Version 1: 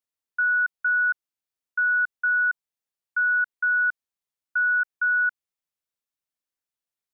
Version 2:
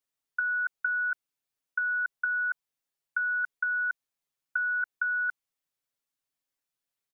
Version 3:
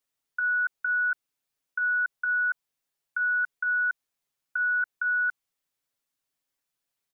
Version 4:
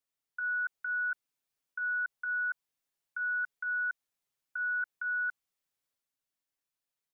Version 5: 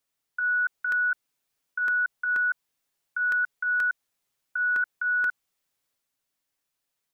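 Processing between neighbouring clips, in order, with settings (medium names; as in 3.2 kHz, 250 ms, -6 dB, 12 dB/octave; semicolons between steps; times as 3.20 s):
comb 7.2 ms, depth 76%
peak limiter -23.5 dBFS, peak gain reduction 5 dB; trim +3.5 dB
transient shaper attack -2 dB, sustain +3 dB; trim -6.5 dB
crackling interface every 0.24 s, samples 64, repeat, from 0.92 s; trim +7.5 dB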